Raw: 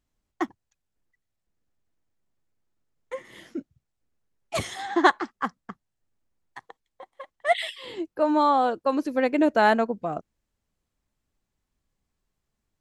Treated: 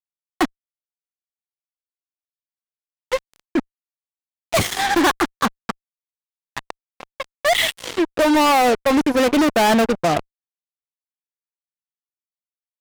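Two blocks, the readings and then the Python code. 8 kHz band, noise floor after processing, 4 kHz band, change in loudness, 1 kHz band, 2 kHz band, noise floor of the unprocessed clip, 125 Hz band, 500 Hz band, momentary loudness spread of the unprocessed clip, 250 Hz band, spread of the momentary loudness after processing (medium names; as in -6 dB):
+16.5 dB, under -85 dBFS, +12.5 dB, +6.0 dB, +5.0 dB, +6.5 dB, -82 dBFS, +11.0 dB, +6.0 dB, 18 LU, +7.5 dB, 18 LU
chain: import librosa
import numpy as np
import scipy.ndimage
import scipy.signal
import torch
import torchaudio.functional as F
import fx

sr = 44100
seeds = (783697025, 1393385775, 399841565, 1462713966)

y = fx.fuzz(x, sr, gain_db=34.0, gate_db=-36.0)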